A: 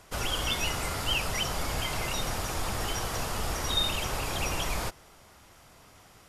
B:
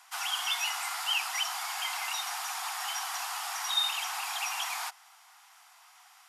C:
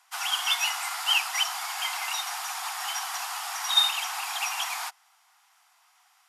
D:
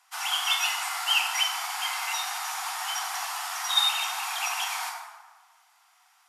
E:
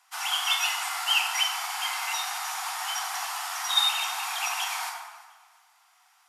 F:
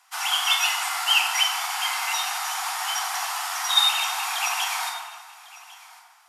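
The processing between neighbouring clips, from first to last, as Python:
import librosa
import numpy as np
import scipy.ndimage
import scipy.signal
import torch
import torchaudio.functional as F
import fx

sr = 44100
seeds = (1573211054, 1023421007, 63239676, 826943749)

y1 = scipy.signal.sosfilt(scipy.signal.butter(16, 720.0, 'highpass', fs=sr, output='sos'), x)
y2 = fx.upward_expand(y1, sr, threshold_db=-52.0, expansion=1.5)
y2 = y2 * librosa.db_to_amplitude(8.0)
y3 = fx.rev_plate(y2, sr, seeds[0], rt60_s=1.4, hf_ratio=0.55, predelay_ms=0, drr_db=0.0)
y3 = y3 * librosa.db_to_amplitude(-2.0)
y4 = fx.echo_feedback(y3, sr, ms=351, feedback_pct=28, wet_db=-22.0)
y5 = y4 + 10.0 ** (-20.0 / 20.0) * np.pad(y4, (int(1100 * sr / 1000.0), 0))[:len(y4)]
y5 = y5 * librosa.db_to_amplitude(4.0)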